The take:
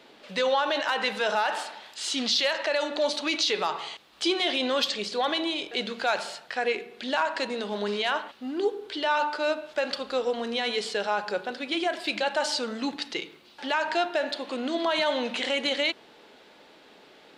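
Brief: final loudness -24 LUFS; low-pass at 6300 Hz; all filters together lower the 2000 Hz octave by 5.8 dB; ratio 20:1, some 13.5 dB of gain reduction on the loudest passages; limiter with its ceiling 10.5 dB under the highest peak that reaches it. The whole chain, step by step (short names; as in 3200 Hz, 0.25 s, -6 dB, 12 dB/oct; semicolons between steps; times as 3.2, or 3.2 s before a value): LPF 6300 Hz; bell 2000 Hz -8 dB; compressor 20:1, threshold -35 dBFS; gain +16.5 dB; limiter -14 dBFS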